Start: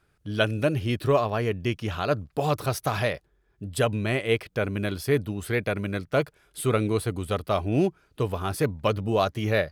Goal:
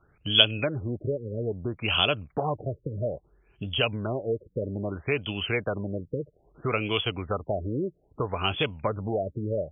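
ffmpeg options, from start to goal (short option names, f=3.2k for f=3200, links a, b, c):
-filter_complex "[0:a]acrossover=split=620|1300[a][b][c];[a]acompressor=threshold=-36dB:ratio=4[d];[b]acompressor=threshold=-36dB:ratio=4[e];[c]acompressor=threshold=-39dB:ratio=4[f];[d][e][f]amix=inputs=3:normalize=0,aexciter=amount=14.9:drive=7:freq=2.9k,afftfilt=real='re*lt(b*sr/1024,550*pow(3500/550,0.5+0.5*sin(2*PI*0.61*pts/sr)))':imag='im*lt(b*sr/1024,550*pow(3500/550,0.5+0.5*sin(2*PI*0.61*pts/sr)))':win_size=1024:overlap=0.75,volume=5dB"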